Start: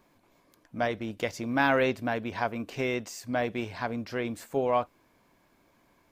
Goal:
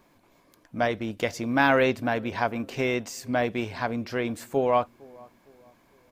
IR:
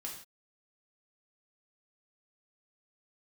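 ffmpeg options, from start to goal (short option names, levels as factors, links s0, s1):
-filter_complex "[0:a]asplit=2[s0][s1];[s1]adelay=457,lowpass=f=810:p=1,volume=0.0708,asplit=2[s2][s3];[s3]adelay=457,lowpass=f=810:p=1,volume=0.49,asplit=2[s4][s5];[s5]adelay=457,lowpass=f=810:p=1,volume=0.49[s6];[s0][s2][s4][s6]amix=inputs=4:normalize=0,volume=1.5"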